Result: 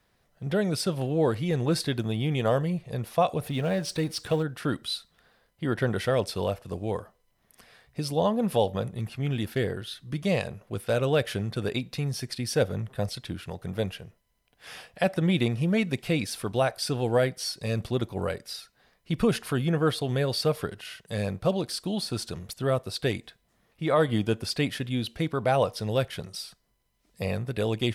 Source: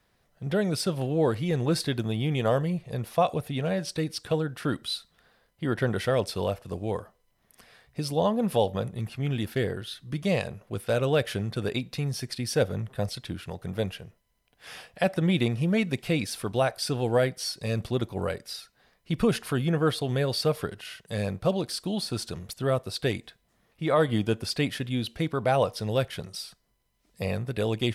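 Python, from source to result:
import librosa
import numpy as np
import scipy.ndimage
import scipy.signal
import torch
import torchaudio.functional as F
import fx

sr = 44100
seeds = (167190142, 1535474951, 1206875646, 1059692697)

y = fx.law_mismatch(x, sr, coded='mu', at=(3.41, 4.43))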